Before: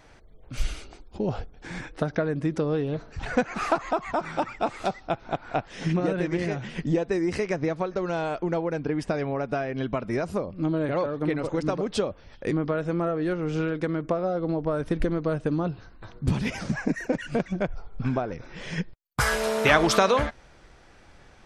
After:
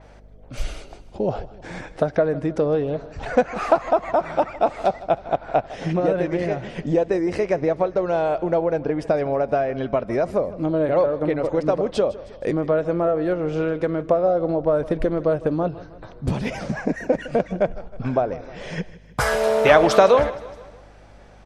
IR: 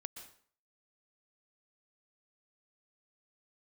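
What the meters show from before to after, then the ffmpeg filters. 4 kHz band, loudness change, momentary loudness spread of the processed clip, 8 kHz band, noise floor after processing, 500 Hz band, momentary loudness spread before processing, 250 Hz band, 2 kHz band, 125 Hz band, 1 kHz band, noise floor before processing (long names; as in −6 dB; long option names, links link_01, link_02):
−0.5 dB, +5.5 dB, 12 LU, can't be measured, −46 dBFS, +8.0 dB, 9 LU, +2.0 dB, +1.0 dB, +0.5 dB, +5.5 dB, −53 dBFS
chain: -filter_complex "[0:a]equalizer=frequency=600:width=1.3:gain=10,aeval=exprs='val(0)+0.00398*(sin(2*PI*50*n/s)+sin(2*PI*2*50*n/s)/2+sin(2*PI*3*50*n/s)/3+sin(2*PI*4*50*n/s)/4+sin(2*PI*5*50*n/s)/5)':channel_layout=same,asplit=2[link_01][link_02];[link_02]aecho=0:1:157|314|471|628:0.126|0.0655|0.034|0.0177[link_03];[link_01][link_03]amix=inputs=2:normalize=0,adynamicequalizer=threshold=0.00708:dfrequency=4800:dqfactor=0.7:tfrequency=4800:tqfactor=0.7:attack=5:release=100:ratio=0.375:range=2.5:mode=cutabove:tftype=highshelf"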